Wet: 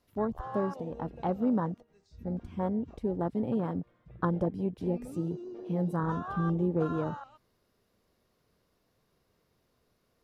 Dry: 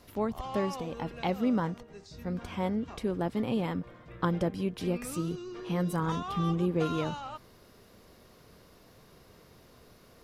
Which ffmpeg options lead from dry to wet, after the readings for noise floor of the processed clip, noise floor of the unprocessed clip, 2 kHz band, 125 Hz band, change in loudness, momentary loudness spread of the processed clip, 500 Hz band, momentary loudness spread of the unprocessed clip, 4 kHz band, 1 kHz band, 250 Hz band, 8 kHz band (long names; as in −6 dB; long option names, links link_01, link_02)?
−74 dBFS, −58 dBFS, −4.5 dB, 0.0 dB, 0.0 dB, 9 LU, 0.0 dB, 10 LU, below −15 dB, −1.0 dB, 0.0 dB, below −15 dB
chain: -af "afwtdn=0.0224"